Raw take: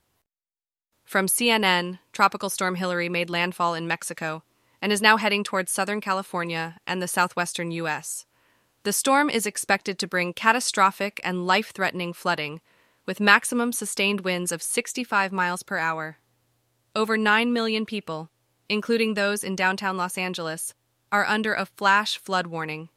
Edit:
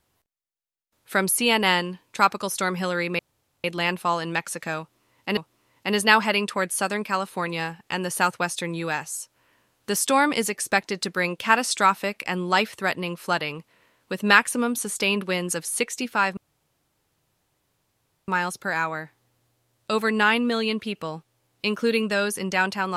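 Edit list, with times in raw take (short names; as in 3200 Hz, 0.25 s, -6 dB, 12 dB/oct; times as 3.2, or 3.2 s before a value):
3.19 insert room tone 0.45 s
4.34–4.92 loop, 2 plays
15.34 insert room tone 1.91 s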